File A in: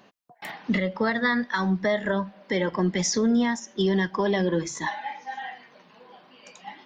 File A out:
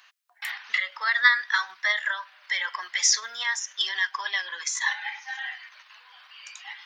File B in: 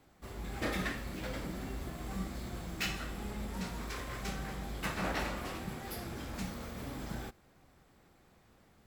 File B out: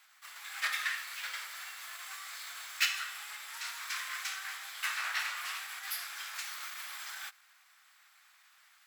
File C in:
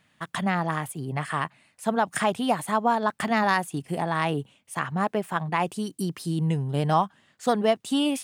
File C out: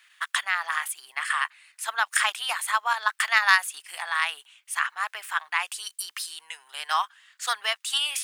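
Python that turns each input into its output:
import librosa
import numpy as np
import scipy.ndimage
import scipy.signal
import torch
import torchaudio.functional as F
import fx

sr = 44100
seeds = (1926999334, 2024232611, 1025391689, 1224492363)

p1 = fx.level_steps(x, sr, step_db=11)
p2 = x + F.gain(torch.from_numpy(p1), 2.5).numpy()
p3 = scipy.signal.sosfilt(scipy.signal.butter(4, 1300.0, 'highpass', fs=sr, output='sos'), p2)
y = F.gain(torch.from_numpy(p3), 2.5).numpy()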